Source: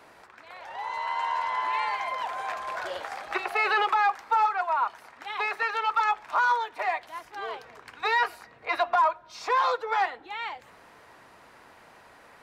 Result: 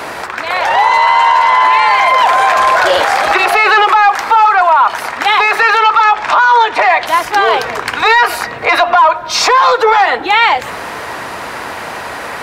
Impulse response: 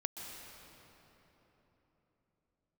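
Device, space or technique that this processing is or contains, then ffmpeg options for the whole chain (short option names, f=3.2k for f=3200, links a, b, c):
mastering chain: -filter_complex "[0:a]highpass=48,equalizer=f=160:t=o:w=2.7:g=-2.5,acompressor=threshold=-29dB:ratio=2,asoftclip=type=tanh:threshold=-19.5dB,alimiter=level_in=31dB:limit=-1dB:release=50:level=0:latency=1,asettb=1/sr,asplit=3[a][b][c];[a]atrim=end=5.824[d];[b]atrim=start=5.82:end=7.06,asetpts=PTS-STARTPTS,afade=t=in:d=0.004:c=qsin,afade=t=out:st=1.236:d=0.004:c=qsin,lowpass=6.8k[e];[c]atrim=start=7.056[f];[d][e]acrossfade=d=0.004:c1=hsin:c2=qsin[g];[g][f]acrossfade=d=0.004:c1=qsin:c2=hsin,volume=-1dB"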